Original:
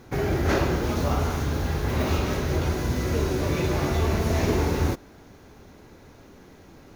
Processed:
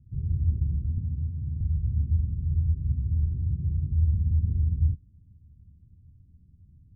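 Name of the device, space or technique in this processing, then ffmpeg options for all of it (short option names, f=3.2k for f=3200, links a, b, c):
the neighbour's flat through the wall: -filter_complex "[0:a]lowpass=f=160:w=0.5412,lowpass=f=160:w=1.3066,equalizer=f=81:t=o:w=0.91:g=8,asettb=1/sr,asplit=3[a][b][c];[a]atrim=end=0.984[d];[b]atrim=start=0.98:end=1.61,asetpts=PTS-STARTPTS,afade=t=in:d=0.004:c=qsin,afade=t=out:st=0.626:d=0.004:c=qsin,highpass=100[e];[c]atrim=start=1.606[f];[d][e]acrossfade=d=0.004:c1=hsin:c2=qsin[g];[g][f]acrossfade=d=0.004:c1=qsin:c2=hsin,volume=-4.5dB"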